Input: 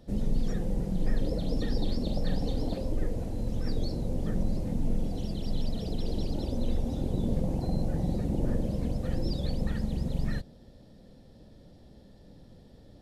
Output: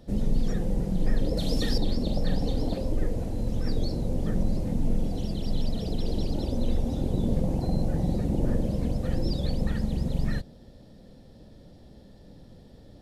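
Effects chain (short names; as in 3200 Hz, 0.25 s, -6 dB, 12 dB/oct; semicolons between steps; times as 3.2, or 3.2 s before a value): 1.37–1.78 high shelf 2200 Hz +11 dB; gain +3 dB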